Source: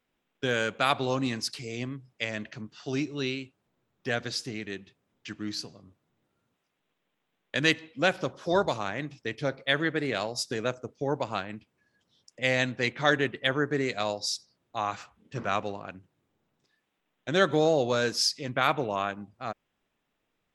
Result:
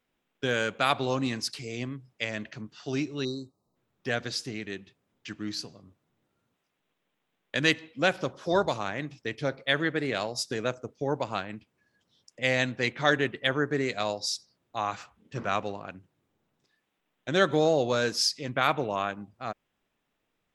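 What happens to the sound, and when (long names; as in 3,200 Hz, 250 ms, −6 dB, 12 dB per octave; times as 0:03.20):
0:03.24–0:03.76: time-frequency box erased 1,300–3,700 Hz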